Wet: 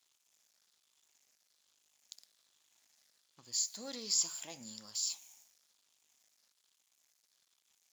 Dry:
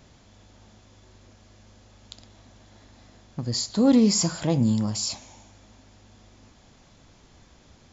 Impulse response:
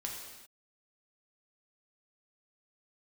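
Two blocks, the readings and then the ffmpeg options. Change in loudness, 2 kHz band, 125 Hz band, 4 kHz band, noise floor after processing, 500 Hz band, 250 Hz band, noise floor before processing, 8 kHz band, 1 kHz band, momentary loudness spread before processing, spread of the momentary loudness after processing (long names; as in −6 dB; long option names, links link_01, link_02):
−13.0 dB, −14.5 dB, −37.5 dB, −8.0 dB, −78 dBFS, −24.0 dB, −32.5 dB, −56 dBFS, can't be measured, −20.5 dB, 16 LU, 15 LU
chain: -af "afftfilt=real='re*pow(10,6/40*sin(2*PI*(0.63*log(max(b,1)*sr/1024/100)/log(2)-(-1.2)*(pts-256)/sr)))':imag='im*pow(10,6/40*sin(2*PI*(0.63*log(max(b,1)*sr/1024/100)/log(2)-(-1.2)*(pts-256)/sr)))':win_size=1024:overlap=0.75,aeval=exprs='sgn(val(0))*max(abs(val(0))-0.00237,0)':channel_layout=same,aderivative,volume=-3dB"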